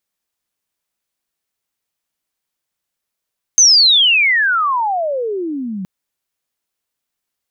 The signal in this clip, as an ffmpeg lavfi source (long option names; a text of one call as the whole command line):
ffmpeg -f lavfi -i "aevalsrc='pow(10,(-5-16.5*t/2.27)/20)*sin(2*PI*6400*2.27/log(180/6400)*(exp(log(180/6400)*t/2.27)-1))':duration=2.27:sample_rate=44100" out.wav